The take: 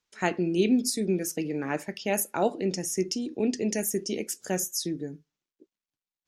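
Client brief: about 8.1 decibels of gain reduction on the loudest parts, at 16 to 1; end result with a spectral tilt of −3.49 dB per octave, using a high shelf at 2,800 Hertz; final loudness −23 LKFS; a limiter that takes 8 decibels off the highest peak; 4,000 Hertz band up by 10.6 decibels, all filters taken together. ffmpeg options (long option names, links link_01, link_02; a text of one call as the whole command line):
ffmpeg -i in.wav -af "highshelf=frequency=2800:gain=7.5,equalizer=frequency=4000:width_type=o:gain=7.5,acompressor=threshold=-24dB:ratio=16,volume=8dB,alimiter=limit=-12dB:level=0:latency=1" out.wav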